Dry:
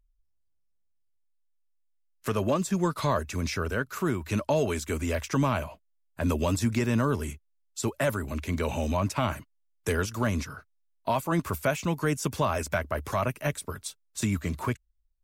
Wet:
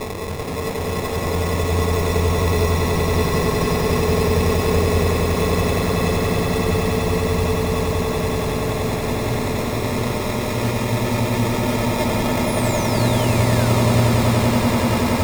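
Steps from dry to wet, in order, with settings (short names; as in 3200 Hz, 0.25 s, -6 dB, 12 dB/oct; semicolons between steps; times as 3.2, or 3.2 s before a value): spectral whitening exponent 0.6; Paulstretch 30×, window 0.50 s, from 9.83; sample-and-hold 29×; painted sound fall, 12.47–13.92, 930–11000 Hz -40 dBFS; swelling echo 94 ms, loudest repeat 8, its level -8.5 dB; gain +3.5 dB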